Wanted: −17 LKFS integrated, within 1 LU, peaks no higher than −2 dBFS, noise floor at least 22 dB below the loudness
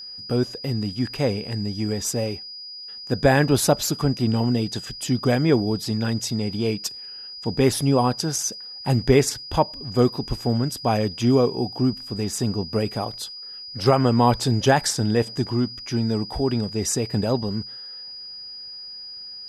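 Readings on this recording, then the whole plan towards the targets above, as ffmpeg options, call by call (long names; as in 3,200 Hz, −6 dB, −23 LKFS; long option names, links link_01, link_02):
interfering tone 4,900 Hz; level of the tone −35 dBFS; integrated loudness −23.0 LKFS; sample peak −5.0 dBFS; target loudness −17.0 LKFS
→ -af "bandreject=frequency=4900:width=30"
-af "volume=6dB,alimiter=limit=-2dB:level=0:latency=1"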